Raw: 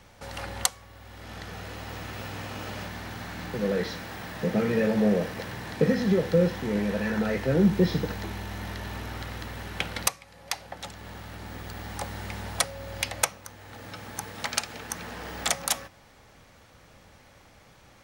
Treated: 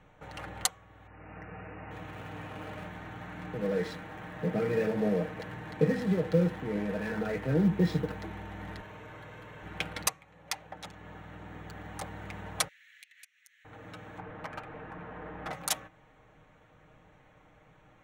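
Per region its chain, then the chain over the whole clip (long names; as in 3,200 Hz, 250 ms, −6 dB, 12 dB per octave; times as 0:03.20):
0:01.07–0:01.91: linear-phase brick-wall low-pass 2,900 Hz + one half of a high-frequency compander decoder only
0:08.81–0:09.63: high-pass filter 120 Hz + comb filter 1.9 ms, depth 44% + hard clipping −39 dBFS
0:12.68–0:13.65: elliptic high-pass filter 1,800 Hz, stop band 50 dB + downward compressor 5 to 1, threshold −44 dBFS
0:14.18–0:15.53: linear delta modulator 64 kbit/s, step −32 dBFS + low-pass filter 1,700 Hz + hard clipping −26 dBFS
whole clip: adaptive Wiener filter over 9 samples; comb filter 6.5 ms, depth 56%; level −5 dB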